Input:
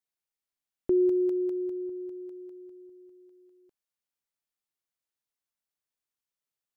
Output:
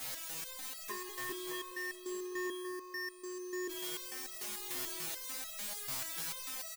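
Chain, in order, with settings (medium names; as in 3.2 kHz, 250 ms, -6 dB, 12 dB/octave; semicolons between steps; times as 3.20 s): jump at every zero crossing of -34.5 dBFS; band-stop 390 Hz, Q 12; in parallel at -0.5 dB: gain riding within 3 dB 0.5 s; on the sum: wavefolder -24.5 dBFS; on a send: bouncing-ball echo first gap 620 ms, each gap 0.7×, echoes 5; on the sum: resonator arpeggio 6.8 Hz 130–650 Hz; trim +5.5 dB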